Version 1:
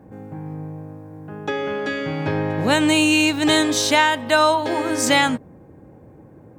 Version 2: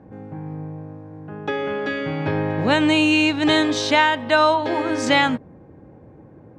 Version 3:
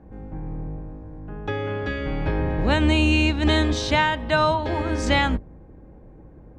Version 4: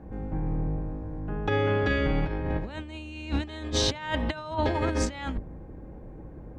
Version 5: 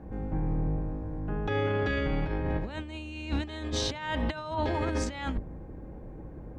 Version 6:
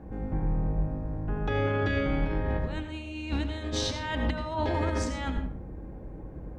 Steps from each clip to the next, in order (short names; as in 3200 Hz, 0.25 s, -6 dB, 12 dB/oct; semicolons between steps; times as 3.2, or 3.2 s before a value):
LPF 4200 Hz 12 dB/oct
octaver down 2 oct, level +4 dB; gain -4 dB
negative-ratio compressor -26 dBFS, ratio -0.5; gain -1.5 dB
limiter -20.5 dBFS, peak gain reduction 8 dB
reverb RT60 0.50 s, pre-delay 77 ms, DRR 7.5 dB